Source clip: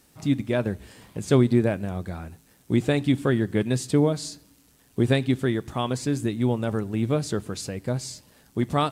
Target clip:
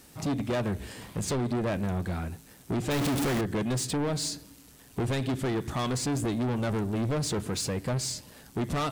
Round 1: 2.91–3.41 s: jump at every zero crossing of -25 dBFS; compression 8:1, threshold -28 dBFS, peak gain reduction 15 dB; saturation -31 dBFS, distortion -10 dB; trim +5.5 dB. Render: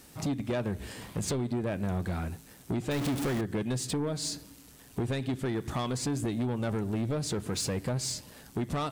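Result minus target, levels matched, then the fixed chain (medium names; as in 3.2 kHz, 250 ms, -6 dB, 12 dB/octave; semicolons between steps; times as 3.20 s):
compression: peak gain reduction +7.5 dB
2.91–3.41 s: jump at every zero crossing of -25 dBFS; compression 8:1, threshold -19.5 dBFS, peak gain reduction 7.5 dB; saturation -31 dBFS, distortion -5 dB; trim +5.5 dB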